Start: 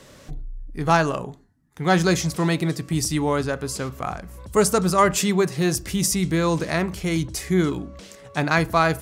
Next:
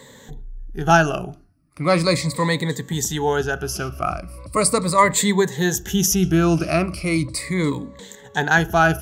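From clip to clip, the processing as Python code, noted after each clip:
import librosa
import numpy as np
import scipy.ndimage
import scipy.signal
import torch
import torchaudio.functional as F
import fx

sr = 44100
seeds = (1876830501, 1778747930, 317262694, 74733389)

y = fx.spec_ripple(x, sr, per_octave=1.0, drift_hz=-0.38, depth_db=16)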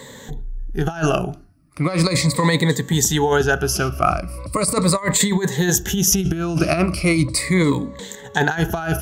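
y = fx.over_compress(x, sr, threshold_db=-20.0, ratio=-0.5)
y = F.gain(torch.from_numpy(y), 3.5).numpy()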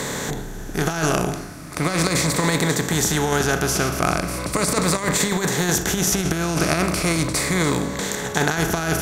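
y = fx.bin_compress(x, sr, power=0.4)
y = F.gain(torch.from_numpy(y), -8.0).numpy()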